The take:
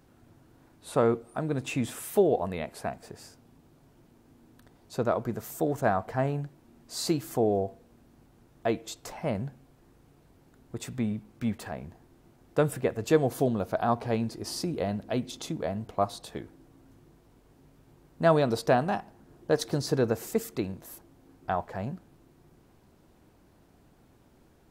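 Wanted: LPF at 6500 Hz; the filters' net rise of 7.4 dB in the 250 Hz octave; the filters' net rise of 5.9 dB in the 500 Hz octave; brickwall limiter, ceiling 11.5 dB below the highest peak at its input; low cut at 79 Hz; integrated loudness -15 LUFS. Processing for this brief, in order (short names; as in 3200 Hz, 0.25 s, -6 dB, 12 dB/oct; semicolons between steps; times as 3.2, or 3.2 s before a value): HPF 79 Hz; LPF 6500 Hz; bell 250 Hz +8 dB; bell 500 Hz +5 dB; gain +13 dB; limiter -1.5 dBFS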